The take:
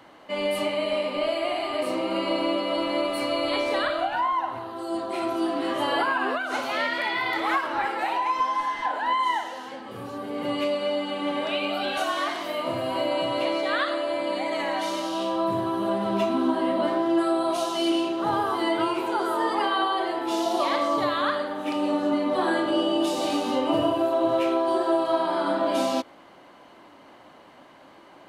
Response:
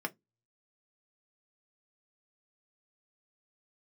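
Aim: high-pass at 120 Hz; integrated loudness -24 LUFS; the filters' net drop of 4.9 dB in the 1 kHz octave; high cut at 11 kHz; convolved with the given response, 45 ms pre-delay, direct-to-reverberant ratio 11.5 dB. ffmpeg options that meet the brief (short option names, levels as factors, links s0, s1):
-filter_complex "[0:a]highpass=120,lowpass=11000,equalizer=f=1000:t=o:g=-6,asplit=2[s0][s1];[1:a]atrim=start_sample=2205,adelay=45[s2];[s1][s2]afir=irnorm=-1:irlink=0,volume=0.178[s3];[s0][s3]amix=inputs=2:normalize=0,volume=1.41"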